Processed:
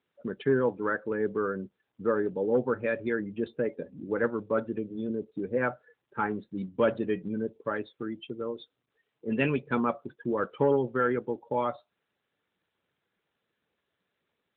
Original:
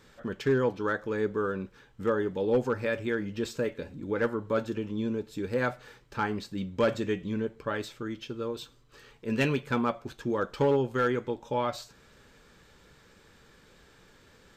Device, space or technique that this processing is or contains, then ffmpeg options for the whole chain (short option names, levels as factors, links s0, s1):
mobile call with aggressive noise cancelling: -af "highpass=140,afftdn=nr=27:nf=-39,volume=1.12" -ar 8000 -c:a libopencore_amrnb -b:a 12200